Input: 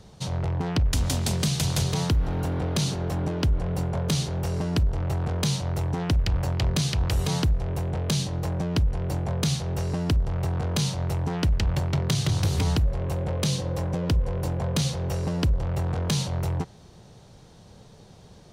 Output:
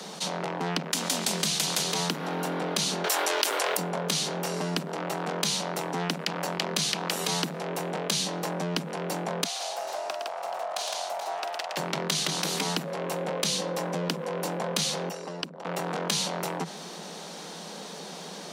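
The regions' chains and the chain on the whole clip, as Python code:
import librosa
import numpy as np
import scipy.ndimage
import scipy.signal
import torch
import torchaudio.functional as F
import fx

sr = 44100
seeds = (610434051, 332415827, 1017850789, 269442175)

y = fx.chain(x, sr, fx.highpass(hz=360.0, slope=24),
    fx.tilt_eq(slope=4.0),
    fx.env_flatten(amount_pct=70), at=(3.04, 3.77))
y = fx.chain(y, sr, fx.ladder_highpass(hz=620.0, resonance_pct=70),
    fx.echo_multitap(ms=(45, 112, 161, 429), db=(-10.0, -7.0, -3.5, -13.5)),
    fx.doppler_dist(depth_ms=0.17), at=(9.44, 11.77))
y = fx.chain(y, sr, fx.envelope_sharpen(power=1.5),
    fx.highpass(hz=1300.0, slope=6),
    fx.transformer_sat(knee_hz=850.0), at=(15.09, 15.65))
y = scipy.signal.sosfilt(scipy.signal.butter(16, 160.0, 'highpass', fs=sr, output='sos'), y)
y = fx.low_shelf(y, sr, hz=460.0, db=-10.5)
y = fx.env_flatten(y, sr, amount_pct=50)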